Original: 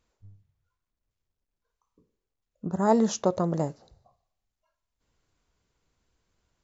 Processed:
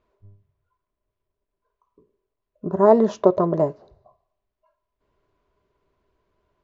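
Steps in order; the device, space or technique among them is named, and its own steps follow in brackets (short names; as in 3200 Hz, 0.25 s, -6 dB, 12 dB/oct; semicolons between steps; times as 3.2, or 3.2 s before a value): inside a cardboard box (LPF 3000 Hz 12 dB/oct; small resonant body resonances 400/610/1000 Hz, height 14 dB, ringing for 50 ms); gain +1.5 dB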